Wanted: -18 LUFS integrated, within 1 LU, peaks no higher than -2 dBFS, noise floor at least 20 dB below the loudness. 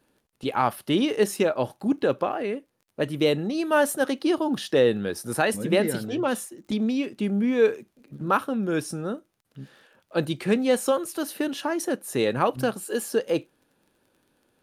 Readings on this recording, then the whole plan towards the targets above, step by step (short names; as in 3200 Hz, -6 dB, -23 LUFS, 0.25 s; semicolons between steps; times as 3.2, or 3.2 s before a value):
ticks 27/s; loudness -25.5 LUFS; peak -8.5 dBFS; loudness target -18.0 LUFS
-> de-click; gain +7.5 dB; limiter -2 dBFS